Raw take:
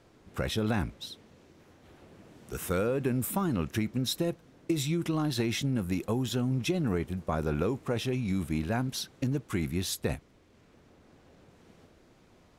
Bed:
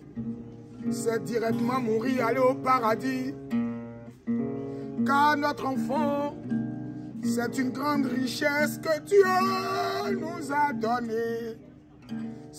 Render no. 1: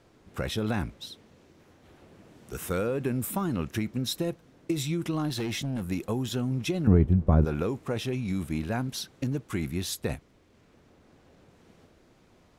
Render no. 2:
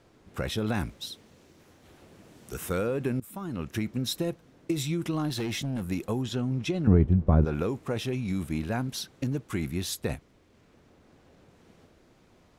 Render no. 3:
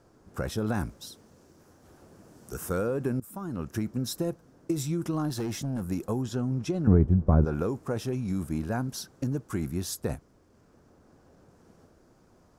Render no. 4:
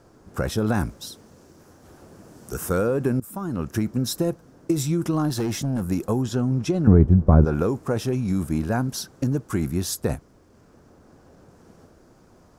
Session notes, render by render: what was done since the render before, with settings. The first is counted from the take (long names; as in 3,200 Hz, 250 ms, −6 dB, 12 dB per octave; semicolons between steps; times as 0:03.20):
0:05.29–0:05.89: hard clipping −27 dBFS; 0:06.87–0:07.45: spectral tilt −4.5 dB per octave
0:00.75–0:02.54: high-shelf EQ 4,200 Hz +7 dB; 0:03.20–0:03.84: fade in, from −19 dB; 0:06.21–0:07.53: high-frequency loss of the air 50 metres
flat-topped bell 2,800 Hz −9.5 dB 1.3 octaves
level +6.5 dB; brickwall limiter −3 dBFS, peak gain reduction 1.5 dB